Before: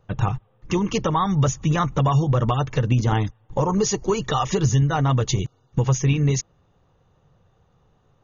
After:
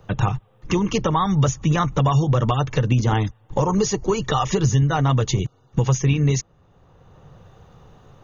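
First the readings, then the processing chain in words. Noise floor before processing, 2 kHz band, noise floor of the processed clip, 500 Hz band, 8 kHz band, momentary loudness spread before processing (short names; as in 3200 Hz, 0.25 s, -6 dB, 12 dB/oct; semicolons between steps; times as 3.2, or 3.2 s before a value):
-62 dBFS, +1.5 dB, -57 dBFS, +1.0 dB, n/a, 7 LU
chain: three-band squash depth 40%; gain +1 dB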